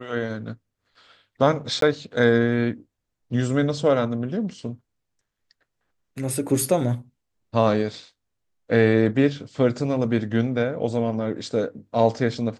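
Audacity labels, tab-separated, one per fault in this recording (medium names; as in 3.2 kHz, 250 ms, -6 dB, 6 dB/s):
1.810000	1.820000	dropout 13 ms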